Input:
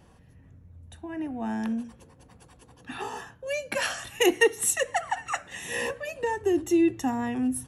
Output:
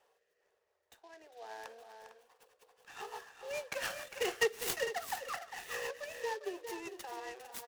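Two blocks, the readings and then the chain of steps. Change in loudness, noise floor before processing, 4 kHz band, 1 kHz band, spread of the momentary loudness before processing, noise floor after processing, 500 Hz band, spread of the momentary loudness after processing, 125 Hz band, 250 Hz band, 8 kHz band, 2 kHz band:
-11.5 dB, -56 dBFS, -8.5 dB, -10.5 dB, 15 LU, -79 dBFS, -11.0 dB, 21 LU, -19.0 dB, -25.5 dB, -13.0 dB, -9.5 dB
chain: rotary speaker horn 1 Hz, later 7 Hz, at 2.06; in parallel at -10 dB: hard clip -23 dBFS, distortion -10 dB; on the sum: elliptic high-pass 420 Hz, stop band 40 dB; tapped delay 0.403/0.453 s -10/-12 dB; noise-modulated delay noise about 3400 Hz, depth 0.033 ms; gain -8.5 dB

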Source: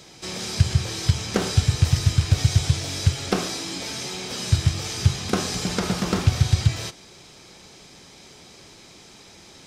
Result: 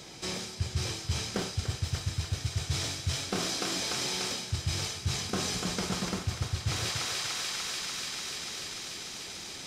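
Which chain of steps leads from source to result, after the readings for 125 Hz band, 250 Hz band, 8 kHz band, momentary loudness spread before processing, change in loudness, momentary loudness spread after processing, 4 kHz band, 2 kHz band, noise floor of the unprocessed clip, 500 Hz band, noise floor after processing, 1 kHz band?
-12.5 dB, -9.5 dB, -3.0 dB, 9 LU, -9.0 dB, 6 LU, -3.0 dB, -3.5 dB, -48 dBFS, -8.0 dB, -43 dBFS, -5.5 dB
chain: thinning echo 0.294 s, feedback 84%, high-pass 590 Hz, level -3.5 dB; reverse; compressor 6:1, threshold -29 dBFS, peak gain reduction 17.5 dB; reverse

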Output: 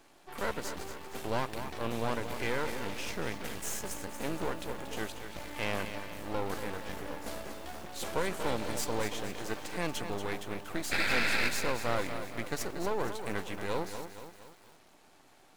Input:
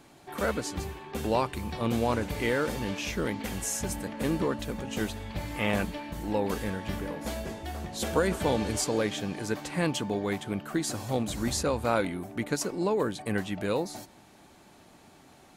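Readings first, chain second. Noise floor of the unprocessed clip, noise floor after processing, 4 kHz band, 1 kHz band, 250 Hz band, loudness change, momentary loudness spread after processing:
-56 dBFS, -60 dBFS, -2.0 dB, -3.5 dB, -9.0 dB, -5.0 dB, 11 LU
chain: tone controls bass -10 dB, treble -1 dB; soft clip -17.5 dBFS, distortion -20 dB; painted sound noise, 10.91–11.49, 1300–2700 Hz -26 dBFS; half-wave rectifier; lo-fi delay 0.234 s, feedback 55%, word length 8-bit, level -9 dB

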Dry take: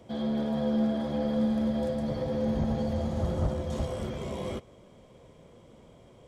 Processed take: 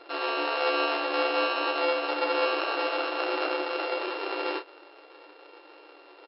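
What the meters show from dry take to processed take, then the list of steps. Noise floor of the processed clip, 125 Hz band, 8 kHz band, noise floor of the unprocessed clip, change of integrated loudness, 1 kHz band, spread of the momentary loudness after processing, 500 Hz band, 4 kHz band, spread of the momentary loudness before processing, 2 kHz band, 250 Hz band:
-53 dBFS, under -40 dB, under -25 dB, -55 dBFS, +2.5 dB, +12.5 dB, 5 LU, +4.0 dB, +14.0 dB, 8 LU, +19.0 dB, -9.5 dB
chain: sample sorter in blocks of 32 samples; FFT band-pass 280–5400 Hz; doubler 33 ms -7.5 dB; gain +5.5 dB

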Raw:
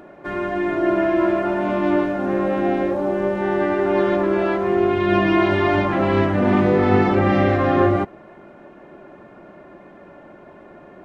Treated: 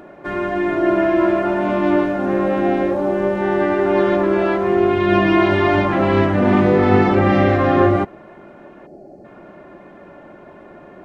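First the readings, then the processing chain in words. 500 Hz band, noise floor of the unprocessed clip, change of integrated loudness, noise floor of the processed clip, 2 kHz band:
+2.5 dB, -45 dBFS, +2.5 dB, -42 dBFS, +2.5 dB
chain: spectral gain 8.86–9.25, 840–4100 Hz -21 dB; gain +2.5 dB

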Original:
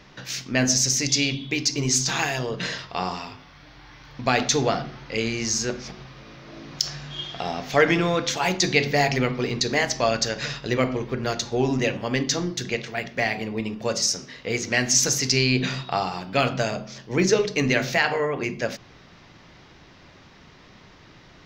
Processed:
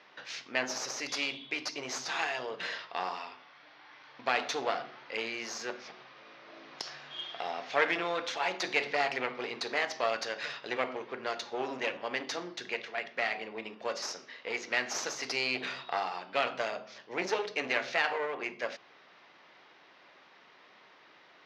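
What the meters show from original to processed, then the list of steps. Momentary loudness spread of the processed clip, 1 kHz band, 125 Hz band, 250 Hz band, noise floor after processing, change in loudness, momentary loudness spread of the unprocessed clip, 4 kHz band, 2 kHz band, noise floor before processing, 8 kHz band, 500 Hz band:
12 LU, -6.5 dB, -28.5 dB, -17.5 dB, -59 dBFS, -10.5 dB, 11 LU, -11.0 dB, -6.5 dB, -50 dBFS, -18.0 dB, -10.0 dB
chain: one-sided clip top -27 dBFS; BPF 520–3600 Hz; gain -4.5 dB

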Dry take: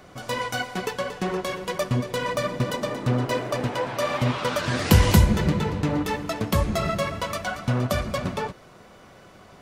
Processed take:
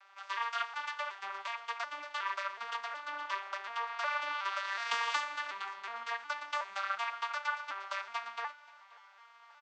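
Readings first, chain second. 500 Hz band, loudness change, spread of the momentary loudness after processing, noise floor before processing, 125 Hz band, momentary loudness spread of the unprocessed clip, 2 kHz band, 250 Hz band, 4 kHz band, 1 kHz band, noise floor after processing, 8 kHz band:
-22.5 dB, -12.0 dB, 7 LU, -49 dBFS, under -40 dB, 10 LU, -5.0 dB, under -40 dB, -10.0 dB, -6.0 dB, -59 dBFS, -17.5 dB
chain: arpeggiated vocoder minor triad, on G3, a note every 0.367 s; HPF 1100 Hz 24 dB/oct; air absorption 74 m; feedback echo 0.529 s, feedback 54%, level -23 dB; gain +3 dB

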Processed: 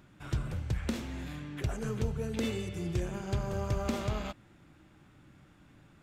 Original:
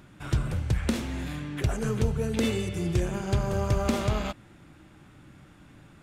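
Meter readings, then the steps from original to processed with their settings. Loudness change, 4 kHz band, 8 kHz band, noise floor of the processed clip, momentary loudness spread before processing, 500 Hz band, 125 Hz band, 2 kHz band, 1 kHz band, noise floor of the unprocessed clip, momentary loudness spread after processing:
-6.5 dB, -6.5 dB, -7.5 dB, -60 dBFS, 7 LU, -6.5 dB, -6.5 dB, -6.5 dB, -6.5 dB, -54 dBFS, 7 LU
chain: bell 9600 Hz -5.5 dB 0.26 oct; gain -6.5 dB

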